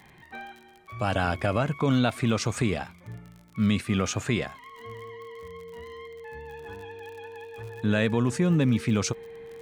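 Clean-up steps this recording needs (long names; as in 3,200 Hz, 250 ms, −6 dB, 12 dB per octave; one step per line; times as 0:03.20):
click removal
notch filter 460 Hz, Q 30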